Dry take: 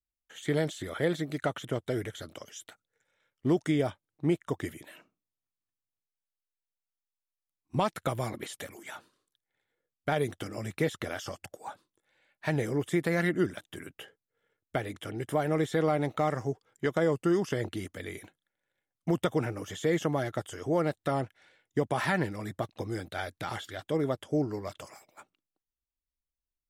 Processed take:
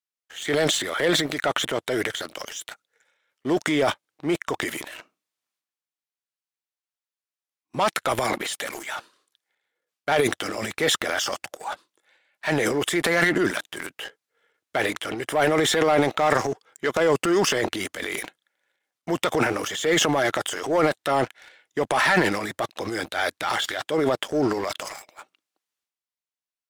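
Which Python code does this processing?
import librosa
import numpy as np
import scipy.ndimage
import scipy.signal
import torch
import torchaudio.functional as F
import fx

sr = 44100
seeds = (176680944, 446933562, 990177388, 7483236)

y = fx.weighting(x, sr, curve='A')
y = fx.leveller(y, sr, passes=2)
y = fx.transient(y, sr, attack_db=-4, sustain_db=10)
y = F.gain(torch.from_numpy(y), 4.5).numpy()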